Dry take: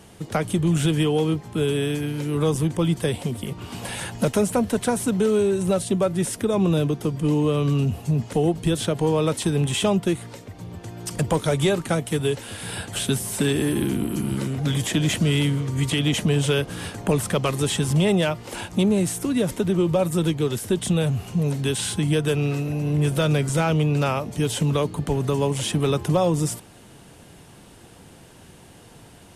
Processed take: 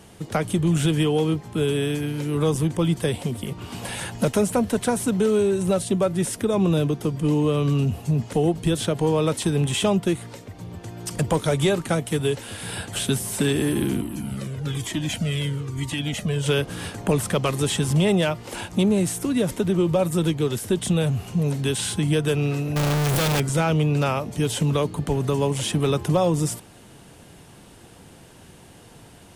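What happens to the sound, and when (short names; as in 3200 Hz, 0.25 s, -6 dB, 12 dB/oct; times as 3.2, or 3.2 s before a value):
14.01–16.46 cascading flanger falling 1.1 Hz
22.76–23.4 infinite clipping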